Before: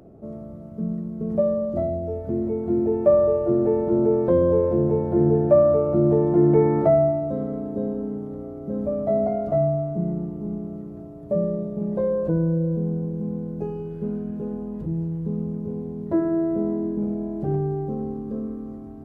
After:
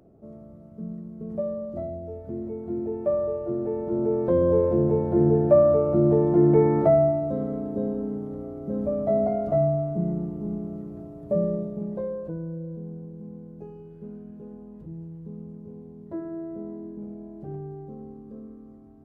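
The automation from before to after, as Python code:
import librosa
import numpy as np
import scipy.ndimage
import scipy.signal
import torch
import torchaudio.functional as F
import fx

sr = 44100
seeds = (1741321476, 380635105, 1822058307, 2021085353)

y = fx.gain(x, sr, db=fx.line((3.69, -8.0), (4.56, -1.0), (11.55, -1.0), (12.37, -12.0)))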